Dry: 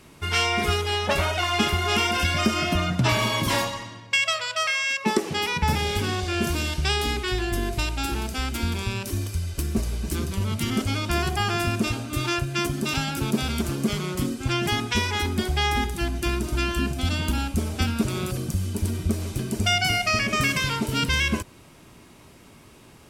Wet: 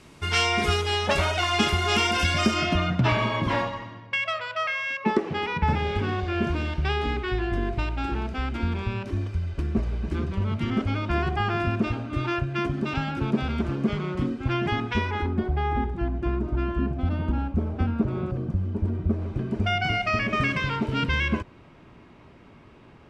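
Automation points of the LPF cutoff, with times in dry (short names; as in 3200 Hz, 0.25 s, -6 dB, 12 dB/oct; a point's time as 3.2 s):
2.43 s 8400 Hz
2.8 s 3700 Hz
3.35 s 2100 Hz
14.99 s 2100 Hz
15.42 s 1100 Hz
19.03 s 1100 Hz
20.01 s 2400 Hz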